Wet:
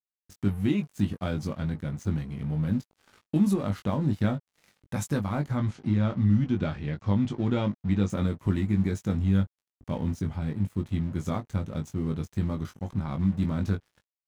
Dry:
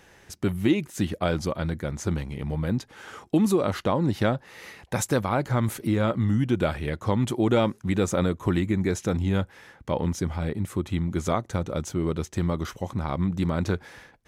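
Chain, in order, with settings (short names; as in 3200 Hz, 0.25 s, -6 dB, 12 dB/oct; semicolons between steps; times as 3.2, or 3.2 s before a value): resonant low shelf 290 Hz +6.5 dB, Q 1.5; crossover distortion -39.5 dBFS; 5.57–8.1 LPF 6300 Hz 24 dB/oct; doubler 20 ms -5.5 dB; gain -8 dB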